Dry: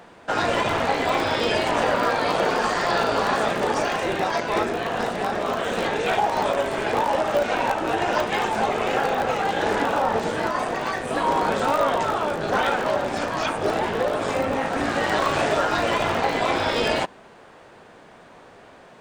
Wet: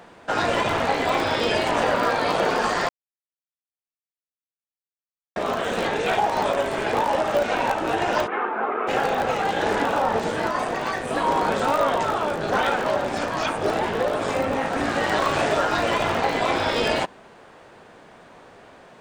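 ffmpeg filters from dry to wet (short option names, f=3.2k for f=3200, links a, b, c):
-filter_complex "[0:a]asplit=3[a][b][c];[a]afade=t=out:st=8.26:d=0.02[d];[b]highpass=f=270:w=0.5412,highpass=f=270:w=1.3066,equalizer=f=590:t=q:w=4:g=-7,equalizer=f=840:t=q:w=4:g=-4,equalizer=f=1.3k:t=q:w=4:g=7,equalizer=f=1.9k:t=q:w=4:g=-4,lowpass=f=2k:w=0.5412,lowpass=f=2k:w=1.3066,afade=t=in:st=8.26:d=0.02,afade=t=out:st=8.87:d=0.02[e];[c]afade=t=in:st=8.87:d=0.02[f];[d][e][f]amix=inputs=3:normalize=0,asplit=3[g][h][i];[g]atrim=end=2.89,asetpts=PTS-STARTPTS,afade=t=out:st=2.886:d=0.004:c=hsin[j];[h]atrim=start=2.89:end=5.36,asetpts=PTS-STARTPTS,volume=0[k];[i]atrim=start=5.36,asetpts=PTS-STARTPTS,afade=t=in:d=0.004:c=hsin[l];[j][k][l]concat=n=3:v=0:a=1"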